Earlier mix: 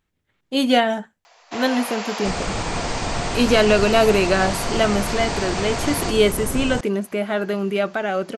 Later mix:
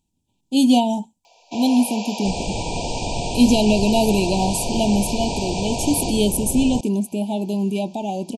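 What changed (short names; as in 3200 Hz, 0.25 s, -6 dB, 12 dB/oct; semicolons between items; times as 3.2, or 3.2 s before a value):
speech: add graphic EQ 250/500/1000/2000/8000 Hz +8/-11/+7/-11/+9 dB; master: add brick-wall FIR band-stop 1000–2300 Hz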